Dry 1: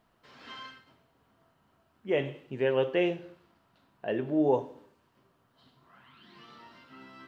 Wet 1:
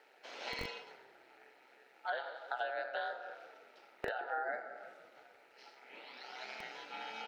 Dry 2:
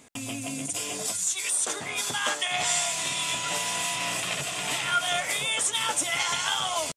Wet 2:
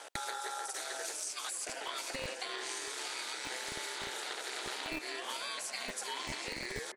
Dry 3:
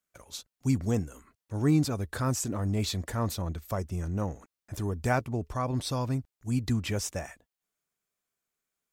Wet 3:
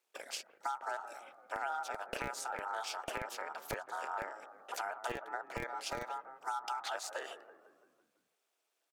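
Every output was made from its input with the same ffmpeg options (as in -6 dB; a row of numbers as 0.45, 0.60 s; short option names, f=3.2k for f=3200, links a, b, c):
-filter_complex "[0:a]highpass=270,highshelf=f=6.1k:g=-9,asplit=2[a][b];[b]alimiter=limit=-21.5dB:level=0:latency=1:release=29,volume=-0.5dB[c];[a][c]amix=inputs=2:normalize=0,acompressor=threshold=-39dB:ratio=12,aeval=exprs='val(0)*sin(2*PI*1100*n/s)':c=same,acrossover=split=350|1600[d][e][f];[d]acrusher=bits=5:dc=4:mix=0:aa=0.000001[g];[e]asplit=7[h][i][j][k][l][m][n];[i]adelay=168,afreqshift=-36,volume=-12dB[o];[j]adelay=336,afreqshift=-72,volume=-17.5dB[p];[k]adelay=504,afreqshift=-108,volume=-23dB[q];[l]adelay=672,afreqshift=-144,volume=-28.5dB[r];[m]adelay=840,afreqshift=-180,volume=-34.1dB[s];[n]adelay=1008,afreqshift=-216,volume=-39.6dB[t];[h][o][p][q][r][s][t]amix=inputs=7:normalize=0[u];[f]aeval=exprs='val(0)*sin(2*PI*130*n/s)':c=same[v];[g][u][v]amix=inputs=3:normalize=0,volume=8dB"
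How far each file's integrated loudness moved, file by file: -12.5, -12.0, -10.0 LU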